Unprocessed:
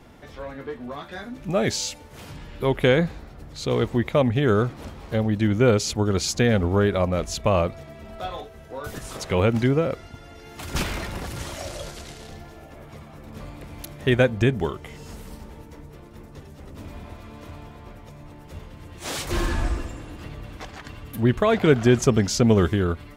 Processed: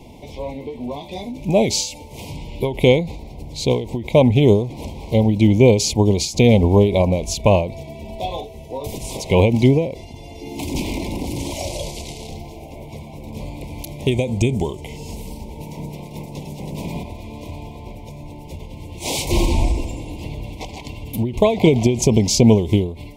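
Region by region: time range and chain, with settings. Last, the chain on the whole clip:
10.41–11.51 bell 280 Hz +11.5 dB 0.79 oct + compressor 2.5:1, threshold -30 dBFS
14.06–14.81 bell 8000 Hz +10.5 dB 0.73 oct + compressor 3:1, threshold -20 dBFS
15.6–17.02 spectral limiter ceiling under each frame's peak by 14 dB + bell 160 Hz +12.5 dB 0.71 oct
whole clip: elliptic band-stop 980–2200 Hz, stop band 40 dB; maximiser +9 dB; ending taper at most 110 dB/s; gain -1 dB

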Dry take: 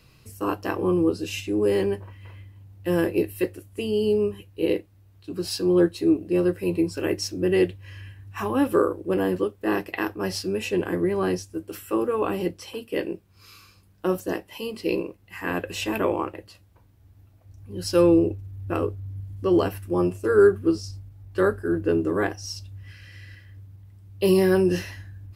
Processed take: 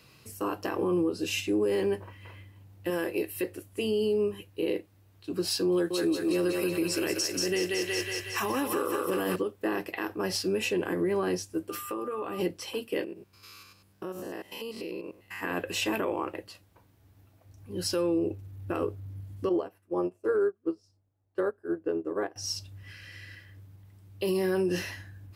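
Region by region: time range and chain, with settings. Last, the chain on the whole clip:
2.9–3.36 bell 150 Hz -8.5 dB 2.8 oct + upward compressor, threshold -36 dBFS
5.72–9.36 high shelf 2300 Hz +11 dB + thinning echo 0.184 s, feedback 65%, high-pass 390 Hz, level -4 dB
11.69–12.38 compressor 12:1, threshold -31 dBFS + whine 1200 Hz -41 dBFS
13.04–15.43 stepped spectrum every 0.1 s + compressor 4:1, threshold -35 dBFS
19.49–22.36 bell 580 Hz +11.5 dB 2.8 oct + upward expander 2.5:1, over -21 dBFS
whole clip: HPF 210 Hz 6 dB/oct; compressor 6:1, threshold -24 dBFS; limiter -21 dBFS; gain +1.5 dB

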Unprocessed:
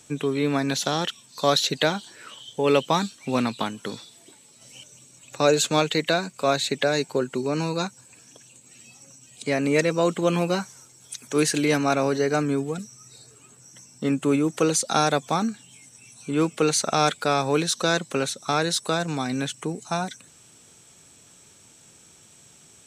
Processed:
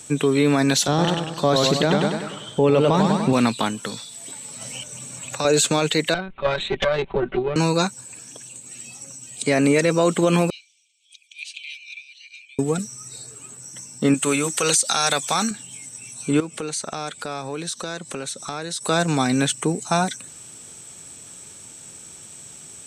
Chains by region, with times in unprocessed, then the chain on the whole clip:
0.88–3.33 tilt -2.5 dB/oct + warbling echo 97 ms, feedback 53%, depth 102 cents, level -6 dB
3.85–5.45 bell 350 Hz -12.5 dB 0.33 oct + three-band squash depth 70%
6.14–7.56 LPC vocoder at 8 kHz pitch kept + comb 5.2 ms, depth 80% + tube stage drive 12 dB, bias 0.8
10.5–12.59 rippled Chebyshev high-pass 2300 Hz, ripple 6 dB + air absorption 320 m
14.14–15.51 tilt shelf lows -7.5 dB, about 1100 Hz + notch 310 Hz, Q 9.4 + compressor 2.5:1, threshold -22 dBFS
16.4–18.81 LPF 12000 Hz 24 dB/oct + compressor 3:1, threshold -38 dBFS
whole clip: bell 8300 Hz +8.5 dB 0.23 oct; limiter -15.5 dBFS; gain +7 dB

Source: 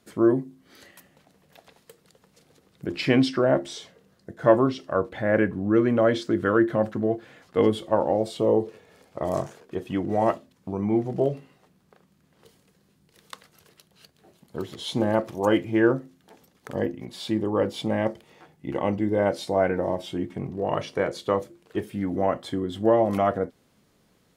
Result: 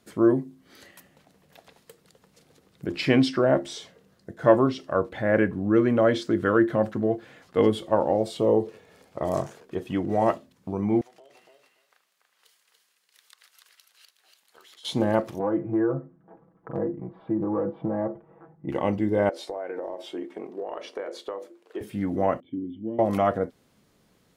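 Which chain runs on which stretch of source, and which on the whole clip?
11.01–14.85 HPF 1400 Hz + compressor 16:1, threshold -48 dBFS + feedback echo 0.288 s, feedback 16%, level -4.5 dB
15.39–18.69 LPF 1300 Hz 24 dB/oct + compressor, threshold -23 dBFS + comb 6.1 ms, depth 74%
19.29–21.81 HPF 350 Hz 24 dB/oct + compressor, threshold -31 dBFS + tilt -2 dB/oct
22.4–22.99 vocal tract filter i + high shelf 3300 Hz -11 dB
whole clip: dry

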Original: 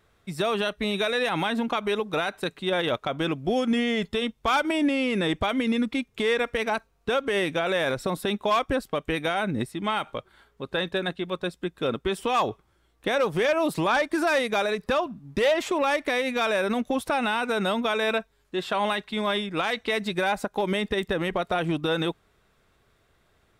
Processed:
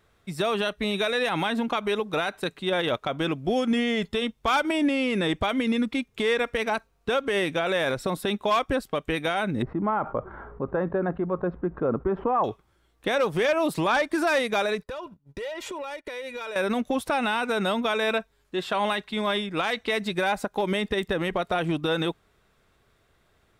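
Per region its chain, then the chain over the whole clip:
9.62–12.44 LPF 1300 Hz 24 dB/oct + fast leveller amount 50%
14.83–16.56 comb 2.1 ms, depth 59% + compressor 5:1, threshold -33 dBFS + gate -43 dBFS, range -23 dB
whole clip: dry

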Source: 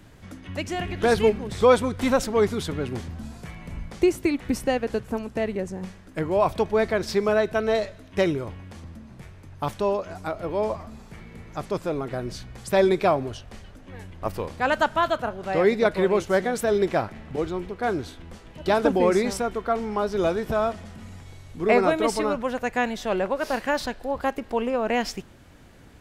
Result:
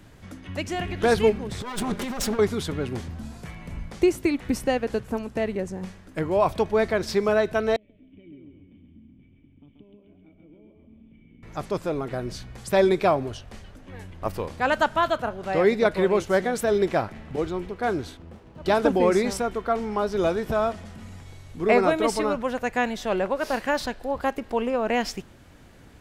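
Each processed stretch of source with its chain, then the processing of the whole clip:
1.62–2.39 minimum comb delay 4.9 ms + negative-ratio compressor -29 dBFS
7.76–11.43 compressor 3:1, threshold -41 dBFS + vocal tract filter i + feedback echo 0.134 s, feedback 44%, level -4 dB
18.17–18.65 HPF 55 Hz + high shelf 2800 Hz -11 dB + running maximum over 17 samples
whole clip: dry

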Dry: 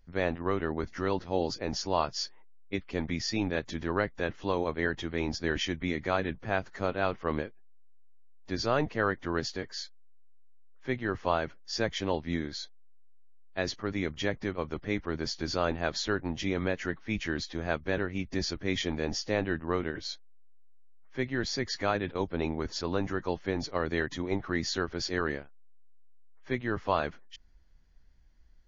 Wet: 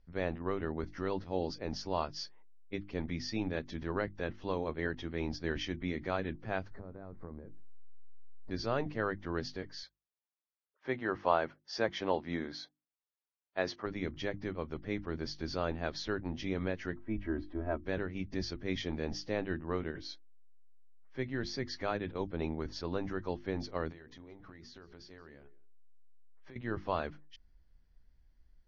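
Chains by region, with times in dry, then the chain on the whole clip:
6.71–8.51 low shelf 400 Hz +11.5 dB + compressor 8:1, threshold -36 dBFS + running mean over 15 samples
9.83–13.86 HPF 200 Hz 6 dB/oct + bell 920 Hz +7 dB 2.5 oct
16.96–17.81 LPF 1200 Hz + comb 3.1 ms, depth 79%
23.9–26.56 notches 60/120/180/240/300/360/420/480 Hz + compressor 8:1, threshold -43 dBFS + echo 0.178 s -23 dB
whole clip: steep low-pass 6000 Hz 48 dB/oct; low shelf 450 Hz +5 dB; notches 50/100/150/200/250/300/350 Hz; gain -7.5 dB

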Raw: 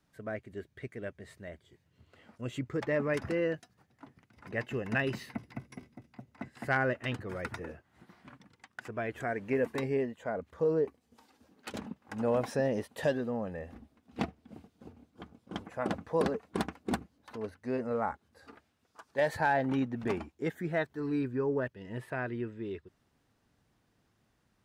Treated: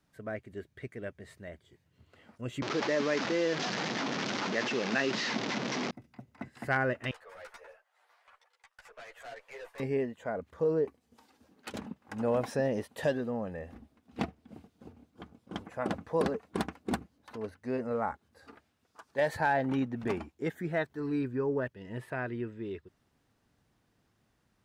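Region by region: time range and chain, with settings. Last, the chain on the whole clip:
2.62–5.91 delta modulation 32 kbps, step -32 dBFS + HPF 190 Hz 24 dB/oct + fast leveller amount 50%
7.11–9.8 steep high-pass 500 Hz 48 dB/oct + tube stage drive 39 dB, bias 0.25 + ensemble effect
whole clip: dry

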